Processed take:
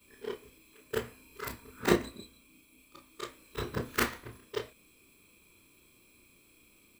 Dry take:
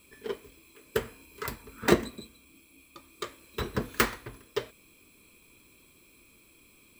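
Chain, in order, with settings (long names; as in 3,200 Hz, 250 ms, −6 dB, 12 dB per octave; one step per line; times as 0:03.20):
every overlapping window played backwards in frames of 68 ms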